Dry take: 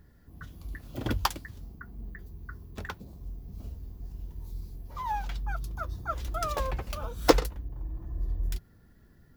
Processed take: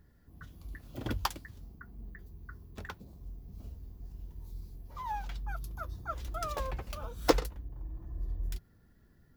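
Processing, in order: 5.48–5.91 bell 12000 Hz +7 dB 0.38 oct; gain -5 dB

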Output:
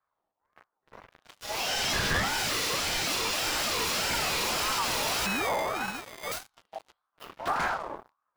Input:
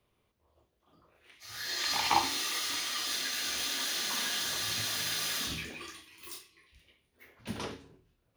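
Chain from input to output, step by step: 5.26–6.32 sample sorter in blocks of 32 samples; tilt shelf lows +7 dB, about 920 Hz; in parallel at +3 dB: compressor 20:1, threshold -43 dBFS, peak gain reduction 23.5 dB; on the sum: sample leveller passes 5; ring modulator with a swept carrier 950 Hz, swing 25%, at 1.7 Hz; gain -7.5 dB

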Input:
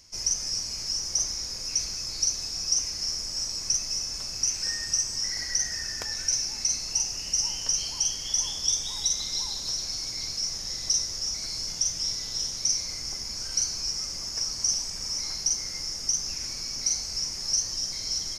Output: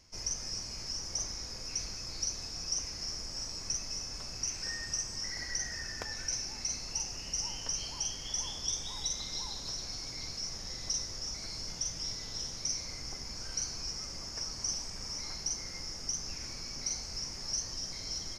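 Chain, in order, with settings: high shelf 3900 Hz -12 dB; gain -1 dB

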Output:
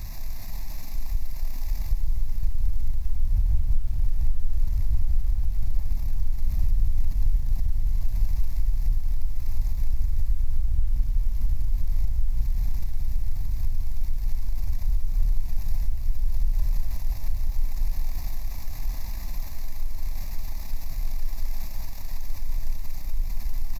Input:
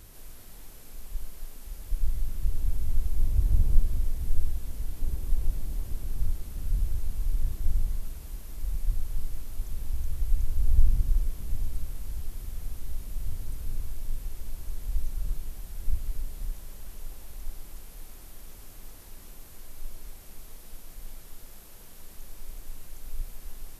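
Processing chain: outdoor echo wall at 240 m, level -7 dB; power-law curve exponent 0.7; compressor 5:1, threshold -23 dBFS, peak gain reduction 14 dB; low shelf 110 Hz +6 dB; fixed phaser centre 2100 Hz, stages 8; lo-fi delay 0.175 s, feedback 80%, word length 8-bit, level -13 dB

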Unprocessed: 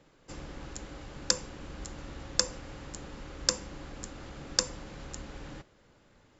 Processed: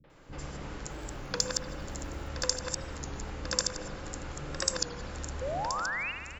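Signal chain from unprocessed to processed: reverse delay 0.126 s, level -3 dB; in parallel at +2 dB: compressor, threshold -46 dBFS, peak gain reduction 24.5 dB; 0.8–2.19 on the sum: short-mantissa float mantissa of 4-bit; on a send: echo 1.019 s -9.5 dB; 5.37–6.08 on the sum: painted sound rise 490–2900 Hz -32 dBFS; three bands offset in time lows, mids, highs 40/100 ms, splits 250/3800 Hz; spring tank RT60 1.8 s, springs 55 ms, chirp 25 ms, DRR 5.5 dB; record warp 33 1/3 rpm, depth 100 cents; gain -2 dB

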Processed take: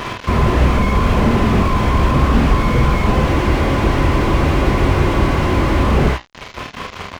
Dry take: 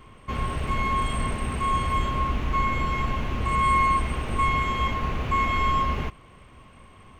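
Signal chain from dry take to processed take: reverb removal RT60 0.64 s; tilt +2.5 dB/oct; in parallel at -1.5 dB: compressor, threshold -36 dBFS, peak gain reduction 15.5 dB; on the sum: formant-preserving pitch shift -1 st; chopper 5.2 Hz, depth 60%, duty 65%; flange 0.73 Hz, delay 7.8 ms, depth 9.1 ms, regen +79%; fuzz box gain 45 dB, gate -50 dBFS; air absorption 98 m; on a send: early reflections 22 ms -10.5 dB, 47 ms -4 dB, 77 ms -8.5 dB; on the sum: downsampling 16000 Hz; spectral freeze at 3.29, 2.56 s; slew limiter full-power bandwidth 69 Hz; gain +5 dB

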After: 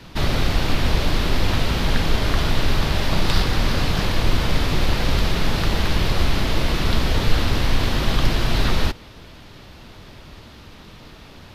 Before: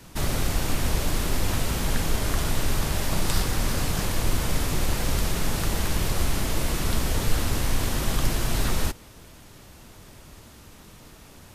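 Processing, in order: resonant high shelf 5800 Hz -11.5 dB, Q 1.5; gain +5.5 dB

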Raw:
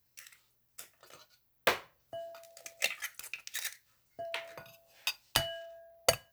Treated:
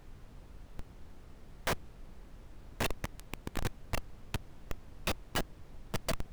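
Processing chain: regenerating reverse delay 0.566 s, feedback 65%, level -5.5 dB; Bessel high-pass 380 Hz, order 4; added harmonics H 3 -20 dB, 4 -29 dB, 7 -28 dB, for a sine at -5.5 dBFS; Schmitt trigger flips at -34.5 dBFS; added noise brown -62 dBFS; gain +14 dB

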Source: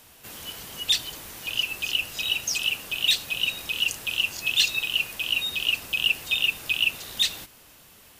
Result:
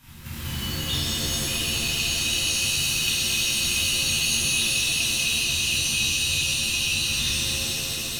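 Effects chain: tone controls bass +11 dB, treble -5 dB; in parallel at -2 dB: level quantiser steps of 13 dB; on the sum: band shelf 510 Hz -13.5 dB 1.3 oct; compressor, threshold -30 dBFS, peak gain reduction 14.5 dB; on a send: thinning echo 0.22 s, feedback 84%, high-pass 150 Hz, level -6 dB; on the sum: shimmer reverb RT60 2.3 s, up +7 st, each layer -2 dB, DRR -9.5 dB; gain -5.5 dB

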